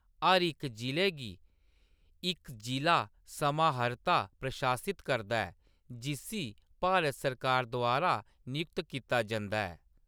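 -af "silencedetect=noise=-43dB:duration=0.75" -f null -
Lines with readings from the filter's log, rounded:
silence_start: 1.34
silence_end: 2.23 | silence_duration: 0.89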